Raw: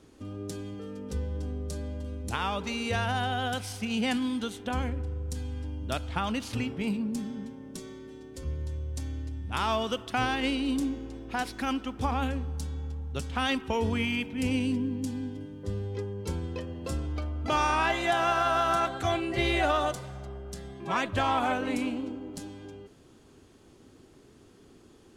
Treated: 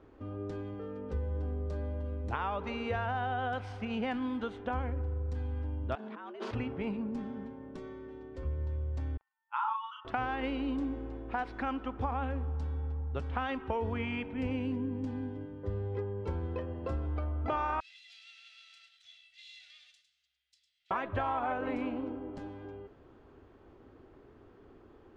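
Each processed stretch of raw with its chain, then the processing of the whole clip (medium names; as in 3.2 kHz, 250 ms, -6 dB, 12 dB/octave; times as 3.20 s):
5.95–6.51 s: treble shelf 8.5 kHz -4.5 dB + compressor with a negative ratio -41 dBFS + frequency shift +140 Hz
9.17–10.05 s: spectral contrast enhancement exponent 1.7 + brick-wall FIR band-pass 820–9600 Hz + doubling 40 ms -2.5 dB
17.80–20.91 s: comb filter that takes the minimum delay 1.5 ms + inverse Chebyshev high-pass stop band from 1.1 kHz, stop band 60 dB + delay 104 ms -8.5 dB
whole clip: low-pass 1.5 kHz 12 dB/octave; peaking EQ 180 Hz -9 dB 1.6 oct; compression 4:1, threshold -33 dBFS; trim +3 dB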